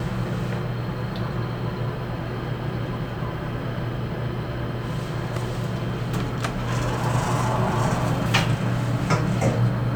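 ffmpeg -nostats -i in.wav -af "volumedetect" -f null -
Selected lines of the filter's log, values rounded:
mean_volume: -24.7 dB
max_volume: -6.2 dB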